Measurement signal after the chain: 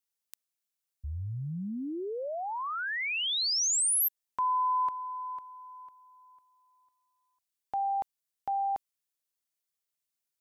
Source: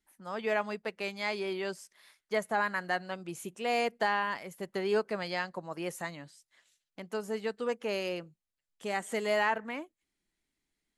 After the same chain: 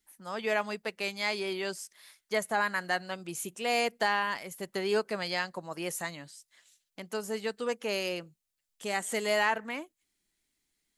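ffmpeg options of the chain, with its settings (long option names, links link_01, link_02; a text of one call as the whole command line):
ffmpeg -i in.wav -af "highshelf=frequency=3300:gain=9.5" out.wav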